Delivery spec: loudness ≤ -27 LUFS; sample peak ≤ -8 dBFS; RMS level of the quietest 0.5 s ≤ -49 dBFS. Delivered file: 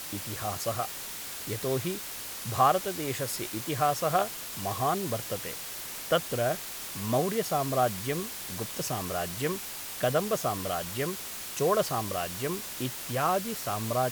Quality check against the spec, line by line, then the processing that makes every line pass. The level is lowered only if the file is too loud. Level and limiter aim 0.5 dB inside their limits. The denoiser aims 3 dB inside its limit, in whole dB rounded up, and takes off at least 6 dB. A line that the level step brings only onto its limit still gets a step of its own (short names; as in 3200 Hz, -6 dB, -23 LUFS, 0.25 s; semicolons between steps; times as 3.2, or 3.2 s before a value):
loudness -30.5 LUFS: OK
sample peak -10.5 dBFS: OK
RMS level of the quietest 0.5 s -39 dBFS: fail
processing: denoiser 13 dB, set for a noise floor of -39 dBFS